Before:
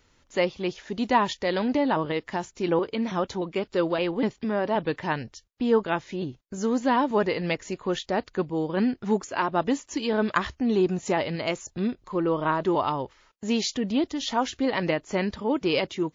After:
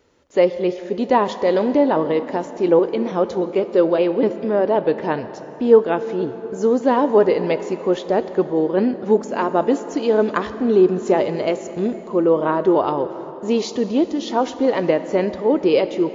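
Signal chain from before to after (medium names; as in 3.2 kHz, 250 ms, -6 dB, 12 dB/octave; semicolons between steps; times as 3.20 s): high-pass 48 Hz; peaking EQ 460 Hz +13 dB 1.8 oct; plate-style reverb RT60 4.1 s, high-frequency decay 0.65×, DRR 11 dB; trim -2 dB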